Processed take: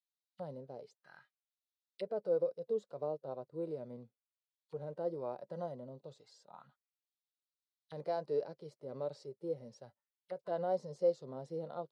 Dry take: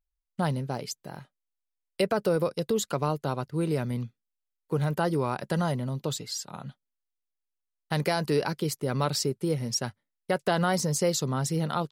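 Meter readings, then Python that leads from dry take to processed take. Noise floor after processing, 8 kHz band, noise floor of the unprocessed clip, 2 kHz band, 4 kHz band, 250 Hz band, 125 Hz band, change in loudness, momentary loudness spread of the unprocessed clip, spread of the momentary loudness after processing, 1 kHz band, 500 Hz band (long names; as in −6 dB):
below −85 dBFS, below −35 dB, −85 dBFS, −24.5 dB, −27.5 dB, −18.0 dB, −22.0 dB, −11.0 dB, 12 LU, 19 LU, −14.5 dB, −7.5 dB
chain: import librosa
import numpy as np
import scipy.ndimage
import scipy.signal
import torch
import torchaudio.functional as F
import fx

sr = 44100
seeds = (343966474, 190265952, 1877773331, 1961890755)

y = fx.band_shelf(x, sr, hz=5900.0, db=10.0, octaves=1.7)
y = fx.hpss(y, sr, part='percussive', gain_db=-13)
y = fx.auto_wah(y, sr, base_hz=560.0, top_hz=3800.0, q=3.0, full_db=-33.5, direction='down')
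y = y * librosa.db_to_amplitude(-1.5)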